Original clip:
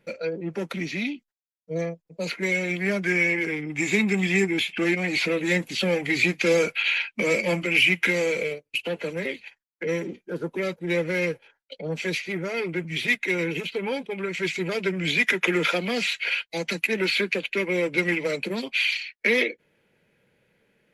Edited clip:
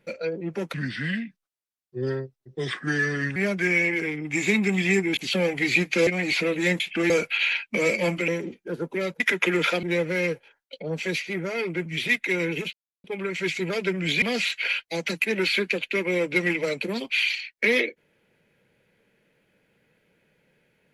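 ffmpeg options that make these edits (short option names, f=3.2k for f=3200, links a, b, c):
-filter_complex "[0:a]asplit=13[a][b][c][d][e][f][g][h][i][j][k][l][m];[a]atrim=end=0.744[n];[b]atrim=start=0.74:end=2.81,asetpts=PTS-STARTPTS,asetrate=34839,aresample=44100,atrim=end_sample=115553,asetpts=PTS-STARTPTS[o];[c]atrim=start=2.806:end=4.622[p];[d]atrim=start=5.648:end=6.552[q];[e]atrim=start=4.918:end=5.652[r];[f]atrim=start=4.618:end=4.922[s];[g]atrim=start=6.548:end=7.732[t];[h]atrim=start=9.898:end=10.822[u];[i]atrim=start=15.208:end=15.842[v];[j]atrim=start=10.818:end=13.72,asetpts=PTS-STARTPTS,afade=t=out:st=2.898:d=0.004:c=hsin[w];[k]atrim=start=13.72:end=14.03,asetpts=PTS-STARTPTS,volume=0[x];[l]atrim=start=14.03:end=15.212,asetpts=PTS-STARTPTS,afade=t=in:d=0.004:c=hsin[y];[m]atrim=start=15.838[z];[n][o]acrossfade=d=0.004:c1=hsin:c2=hsin[aa];[aa][p]acrossfade=d=0.004:c1=hsin:c2=hsin[ab];[ab][q]acrossfade=d=0.004:c1=hsin:c2=hsin[ac];[ac][r]acrossfade=d=0.004:c1=hsin:c2=hsin[ad];[ad][s]acrossfade=d=0.004:c1=hsin:c2=hsin[ae];[ae][t]acrossfade=d=0.004:c1=hsin:c2=hsin[af];[af][u]acrossfade=d=0.004:c1=hsin:c2=hsin[ag];[ag][v]acrossfade=d=0.004:c1=hsin:c2=hsin[ah];[w][x][y]concat=n=3:v=0:a=1[ai];[ah][ai]acrossfade=d=0.004:c1=hsin:c2=hsin[aj];[aj][z]acrossfade=d=0.004:c1=hsin:c2=hsin"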